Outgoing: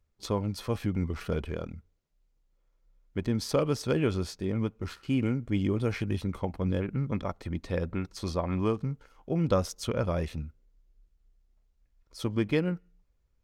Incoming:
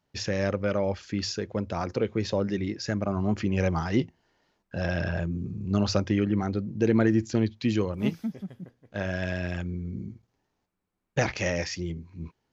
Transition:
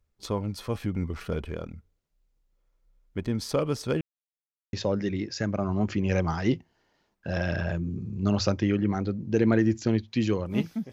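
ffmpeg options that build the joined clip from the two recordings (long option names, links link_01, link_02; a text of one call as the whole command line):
ffmpeg -i cue0.wav -i cue1.wav -filter_complex "[0:a]apad=whole_dur=10.92,atrim=end=10.92,asplit=2[link_01][link_02];[link_01]atrim=end=4.01,asetpts=PTS-STARTPTS,afade=type=out:start_time=4.006:duration=0.004:curve=hsin[link_03];[link_02]atrim=start=4.01:end=4.73,asetpts=PTS-STARTPTS,volume=0[link_04];[1:a]atrim=start=2.21:end=8.4,asetpts=PTS-STARTPTS,afade=type=in:duration=0.004:curve=hsin[link_05];[link_03][link_04][link_05]concat=n=3:v=0:a=1" out.wav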